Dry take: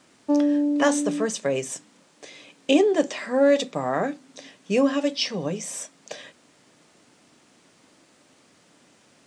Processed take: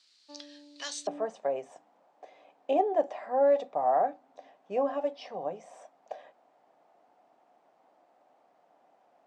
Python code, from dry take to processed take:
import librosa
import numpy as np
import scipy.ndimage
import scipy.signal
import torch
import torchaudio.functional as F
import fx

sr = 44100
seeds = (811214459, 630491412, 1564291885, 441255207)

y = fx.bandpass_q(x, sr, hz=fx.steps((0.0, 4300.0), (1.07, 740.0)), q=5.3)
y = F.gain(torch.from_numpy(y), 5.5).numpy()